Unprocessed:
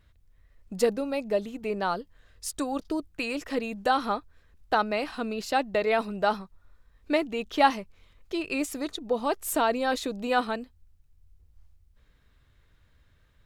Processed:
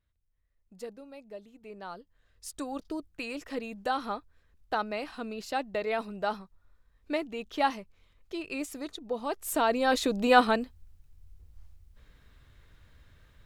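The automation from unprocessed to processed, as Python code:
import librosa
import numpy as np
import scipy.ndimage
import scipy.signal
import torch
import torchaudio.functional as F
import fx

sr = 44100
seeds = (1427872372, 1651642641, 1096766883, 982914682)

y = fx.gain(x, sr, db=fx.line((1.48, -17.5), (2.67, -6.0), (9.26, -6.0), (10.18, 5.0)))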